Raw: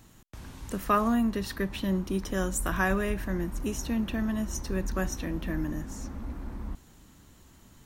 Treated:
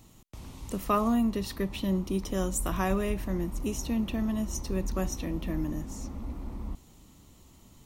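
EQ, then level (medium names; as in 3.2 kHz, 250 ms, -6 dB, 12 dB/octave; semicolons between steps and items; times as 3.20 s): peaking EQ 1.6 kHz -13 dB 0.36 oct; 0.0 dB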